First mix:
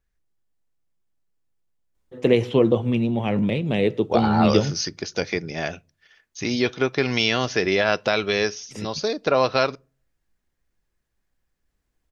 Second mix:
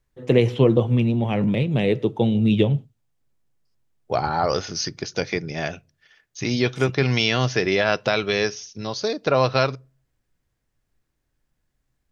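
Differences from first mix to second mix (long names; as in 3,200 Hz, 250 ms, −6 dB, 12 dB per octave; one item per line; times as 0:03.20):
first voice: entry −1.95 s
master: add parametric band 130 Hz +10 dB 0.31 octaves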